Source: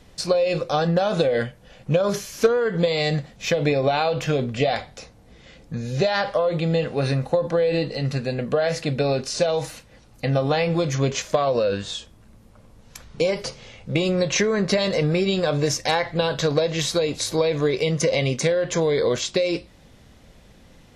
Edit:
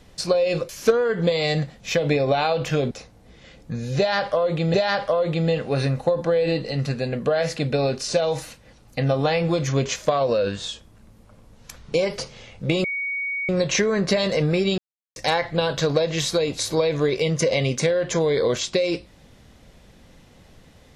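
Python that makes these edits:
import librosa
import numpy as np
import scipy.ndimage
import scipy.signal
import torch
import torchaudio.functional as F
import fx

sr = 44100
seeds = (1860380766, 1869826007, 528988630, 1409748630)

y = fx.edit(x, sr, fx.cut(start_s=0.69, length_s=1.56),
    fx.cut(start_s=4.47, length_s=0.46),
    fx.repeat(start_s=6.0, length_s=0.76, count=2),
    fx.insert_tone(at_s=14.1, length_s=0.65, hz=2240.0, db=-24.0),
    fx.silence(start_s=15.39, length_s=0.38), tone=tone)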